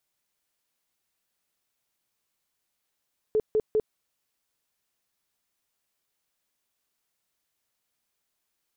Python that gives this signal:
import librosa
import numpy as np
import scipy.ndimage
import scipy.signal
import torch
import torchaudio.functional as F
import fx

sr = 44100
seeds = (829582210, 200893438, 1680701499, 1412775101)

y = fx.tone_burst(sr, hz=432.0, cycles=21, every_s=0.2, bursts=3, level_db=-19.5)